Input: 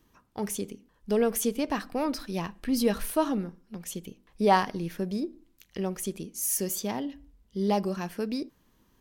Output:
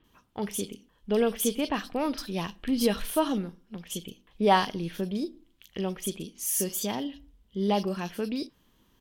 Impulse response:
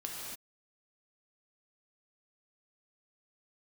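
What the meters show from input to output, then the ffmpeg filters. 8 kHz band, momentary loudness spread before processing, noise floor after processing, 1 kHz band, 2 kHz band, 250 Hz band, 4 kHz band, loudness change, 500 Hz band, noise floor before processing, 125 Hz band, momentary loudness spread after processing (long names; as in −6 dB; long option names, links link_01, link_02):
0.0 dB, 15 LU, −66 dBFS, 0.0 dB, +1.0 dB, 0.0 dB, +4.0 dB, 0.0 dB, 0.0 dB, −67 dBFS, 0.0 dB, 14 LU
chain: -filter_complex "[0:a]equalizer=frequency=3200:width_type=o:width=0.54:gain=11,acrossover=split=3300[link_01][link_02];[link_02]adelay=40[link_03];[link_01][link_03]amix=inputs=2:normalize=0"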